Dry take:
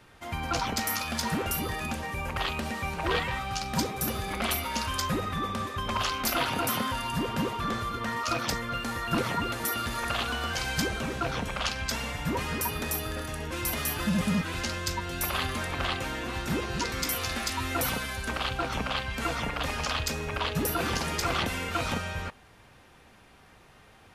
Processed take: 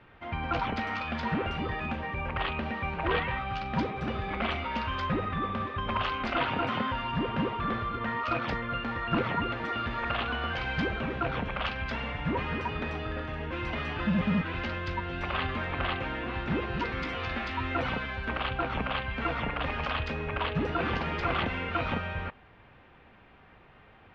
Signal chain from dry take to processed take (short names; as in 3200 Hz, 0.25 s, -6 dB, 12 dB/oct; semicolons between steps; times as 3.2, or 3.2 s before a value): LPF 3000 Hz 24 dB/oct